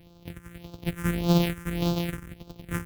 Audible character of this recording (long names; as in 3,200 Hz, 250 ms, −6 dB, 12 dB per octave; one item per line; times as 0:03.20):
a buzz of ramps at a fixed pitch in blocks of 256 samples
phaser sweep stages 4, 1.7 Hz, lowest notch 670–1,900 Hz